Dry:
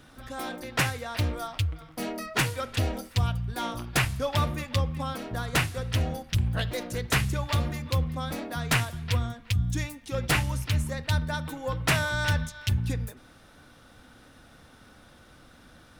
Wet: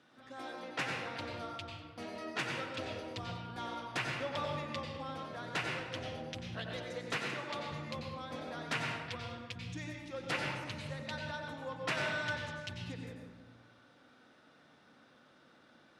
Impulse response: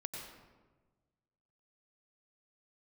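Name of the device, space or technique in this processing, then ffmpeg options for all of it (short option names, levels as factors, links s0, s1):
supermarket ceiling speaker: -filter_complex "[0:a]highpass=230,lowpass=5200[s0];[1:a]atrim=start_sample=2205[s1];[s0][s1]afir=irnorm=-1:irlink=0,asettb=1/sr,asplit=3[s2][s3][s4];[s2]atrim=end=7.164[s5];[s3]atrim=start=7.16:end=7.72,asetpts=PTS-STARTPTS,afade=t=in:d=0.004:c=qsin,afade=t=out:st=0.556:d=0.004:c=qsin,highpass=170[s6];[s4]atrim=start=7.716[s7];[s5][s6]acrossfade=d=0.004:c1=hsin:c2=qsin[s8];[s8][s7]acrossfade=d=0.004:c1=qsin:c2=hsin,volume=0.473"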